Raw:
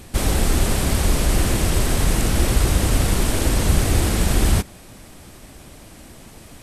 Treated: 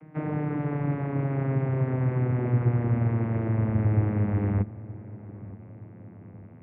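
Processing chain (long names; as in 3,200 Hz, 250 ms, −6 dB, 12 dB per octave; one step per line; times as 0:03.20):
vocoder with a gliding carrier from D#3, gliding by −11 semitones
elliptic low-pass filter 2,200 Hz, stop band 80 dB
on a send: feedback echo with a low-pass in the loop 919 ms, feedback 56%, low-pass 890 Hz, level −17.5 dB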